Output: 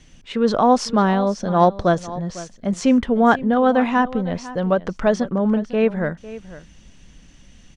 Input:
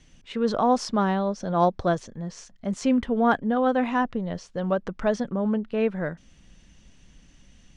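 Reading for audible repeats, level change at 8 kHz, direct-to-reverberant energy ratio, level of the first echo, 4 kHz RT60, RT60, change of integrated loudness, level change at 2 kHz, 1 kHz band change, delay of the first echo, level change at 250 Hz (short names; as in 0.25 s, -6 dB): 1, +6.0 dB, none, -16.5 dB, none, none, +6.0 dB, +6.0 dB, +6.0 dB, 0.502 s, +6.0 dB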